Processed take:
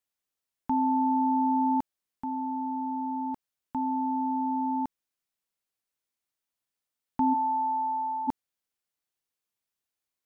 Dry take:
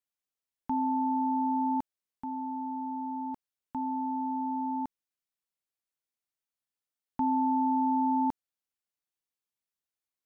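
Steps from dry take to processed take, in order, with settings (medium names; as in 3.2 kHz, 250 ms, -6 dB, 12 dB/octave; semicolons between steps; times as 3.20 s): 7.33–8.27 s: high-pass 550 Hz -> 1.2 kHz 12 dB/octave; trim +3.5 dB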